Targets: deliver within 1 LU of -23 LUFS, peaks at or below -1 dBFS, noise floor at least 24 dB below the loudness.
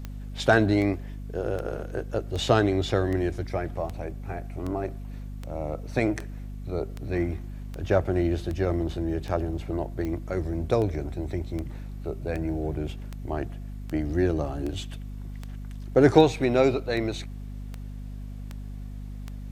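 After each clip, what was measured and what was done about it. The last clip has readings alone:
clicks found 26; hum 50 Hz; highest harmonic 250 Hz; hum level -34 dBFS; loudness -27.5 LUFS; peak level -2.5 dBFS; loudness target -23.0 LUFS
-> de-click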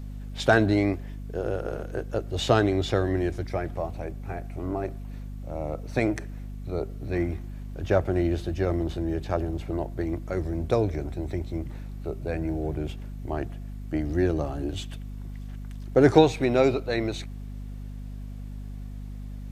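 clicks found 0; hum 50 Hz; highest harmonic 250 Hz; hum level -34 dBFS
-> de-hum 50 Hz, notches 5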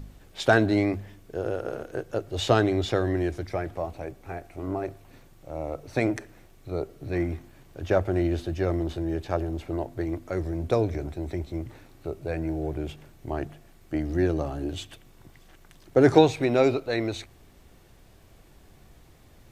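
hum not found; loudness -27.5 LUFS; peak level -3.0 dBFS; loudness target -23.0 LUFS
-> trim +4.5 dB; peak limiter -1 dBFS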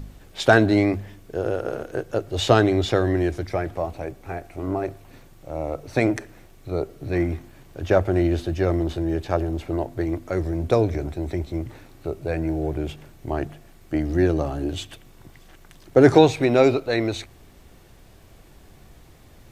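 loudness -23.0 LUFS; peak level -1.0 dBFS; noise floor -50 dBFS

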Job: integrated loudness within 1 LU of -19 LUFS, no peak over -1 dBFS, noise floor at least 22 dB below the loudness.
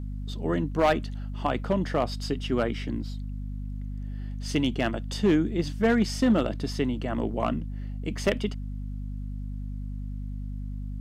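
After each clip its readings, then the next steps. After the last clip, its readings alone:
clipped samples 0.4%; clipping level -15.0 dBFS; hum 50 Hz; highest harmonic 250 Hz; hum level -31 dBFS; loudness -29.0 LUFS; peak level -15.0 dBFS; loudness target -19.0 LUFS
-> clip repair -15 dBFS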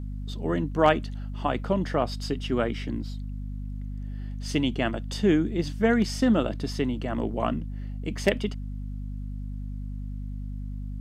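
clipped samples 0.0%; hum 50 Hz; highest harmonic 250 Hz; hum level -31 dBFS
-> de-hum 50 Hz, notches 5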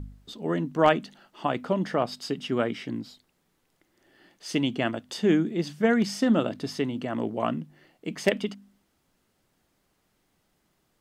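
hum not found; loudness -27.5 LUFS; peak level -6.0 dBFS; loudness target -19.0 LUFS
-> trim +8.5 dB; peak limiter -1 dBFS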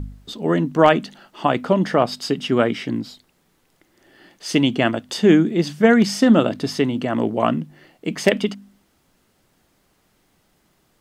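loudness -19.0 LUFS; peak level -1.0 dBFS; noise floor -64 dBFS

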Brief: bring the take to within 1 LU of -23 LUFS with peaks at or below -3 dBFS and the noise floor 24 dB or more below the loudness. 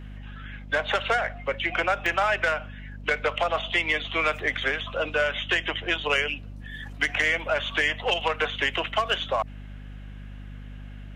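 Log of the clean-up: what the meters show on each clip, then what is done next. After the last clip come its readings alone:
dropouts 4; longest dropout 1.4 ms; hum 50 Hz; highest harmonic 250 Hz; hum level -37 dBFS; loudness -25.5 LUFS; peak level -9.5 dBFS; loudness target -23.0 LUFS
-> interpolate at 2.06/4.39/7.01/8.94 s, 1.4 ms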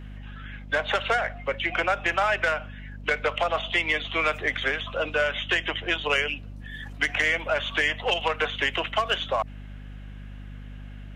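dropouts 0; hum 50 Hz; highest harmonic 250 Hz; hum level -37 dBFS
-> de-hum 50 Hz, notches 5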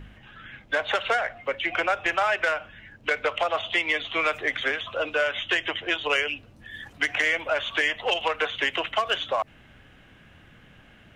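hum not found; loudness -25.5 LUFS; peak level -10.0 dBFS; loudness target -23.0 LUFS
-> trim +2.5 dB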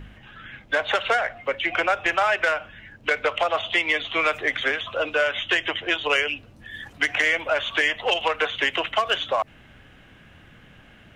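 loudness -23.0 LUFS; peak level -7.5 dBFS; noise floor -51 dBFS

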